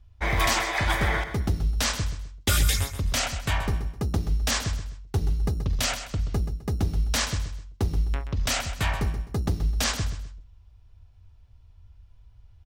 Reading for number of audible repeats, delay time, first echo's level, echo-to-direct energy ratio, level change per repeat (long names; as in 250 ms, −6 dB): 3, 129 ms, −10.5 dB, −10.0 dB, −10.0 dB